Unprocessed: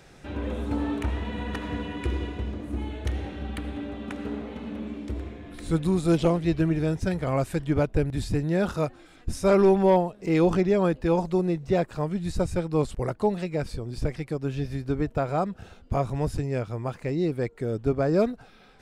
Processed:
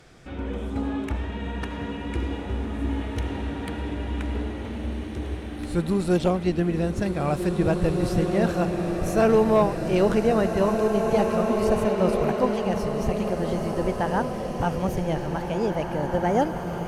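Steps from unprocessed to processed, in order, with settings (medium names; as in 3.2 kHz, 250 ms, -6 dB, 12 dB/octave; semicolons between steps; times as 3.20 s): gliding tape speed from 93% -> 130%; swelling reverb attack 2130 ms, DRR 2 dB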